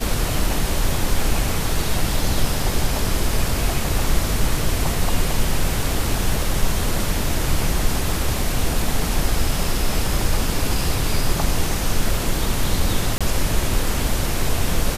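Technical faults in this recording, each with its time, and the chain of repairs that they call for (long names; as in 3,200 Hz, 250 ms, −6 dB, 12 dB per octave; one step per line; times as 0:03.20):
0:13.18–0:13.21: drop-out 26 ms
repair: repair the gap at 0:13.18, 26 ms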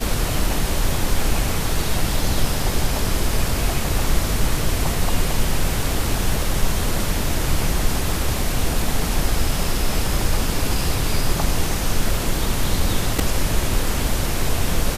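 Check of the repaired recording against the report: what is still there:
none of them is left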